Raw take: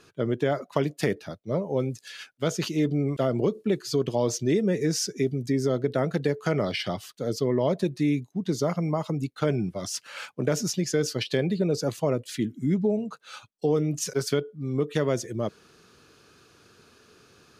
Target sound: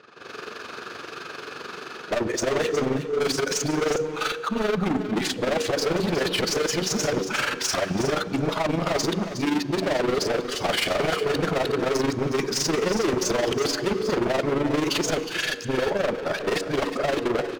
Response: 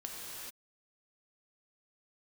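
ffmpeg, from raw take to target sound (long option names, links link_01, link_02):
-filter_complex "[0:a]areverse,highpass=frequency=59:width=0.5412,highpass=frequency=59:width=1.3066,bandreject=frequency=94.38:width_type=h:width=4,bandreject=frequency=188.76:width_type=h:width=4,bandreject=frequency=283.14:width_type=h:width=4,bandreject=frequency=377.52:width_type=h:width=4,bandreject=frequency=471.9:width_type=h:width=4,asplit=2[link_01][link_02];[link_02]highpass=frequency=720:poles=1,volume=25dB,asoftclip=type=tanh:threshold=-10dB[link_03];[link_01][link_03]amix=inputs=2:normalize=0,lowpass=frequency=2100:poles=1,volume=-6dB,dynaudnorm=framelen=150:gausssize=3:maxgain=15dB,bass=frequency=250:gain=-3,treble=frequency=4000:gain=2,adynamicsmooth=sensitivity=4:basefreq=3600,asoftclip=type=hard:threshold=-13.5dB,tremolo=f=23:d=0.71,aecho=1:1:363:0.282,asplit=2[link_04][link_05];[1:a]atrim=start_sample=2205,highshelf=frequency=5900:gain=-8[link_06];[link_05][link_06]afir=irnorm=-1:irlink=0,volume=-9.5dB[link_07];[link_04][link_07]amix=inputs=2:normalize=0,volume=-7.5dB"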